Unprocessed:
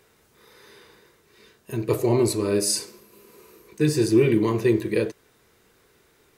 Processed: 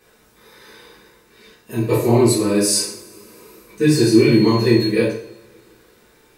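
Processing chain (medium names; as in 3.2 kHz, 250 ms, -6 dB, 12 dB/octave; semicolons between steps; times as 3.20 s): 3.94–4.80 s: whistle 4.3 kHz -30 dBFS; two-slope reverb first 0.47 s, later 2.3 s, from -26 dB, DRR -8.5 dB; trim -2.5 dB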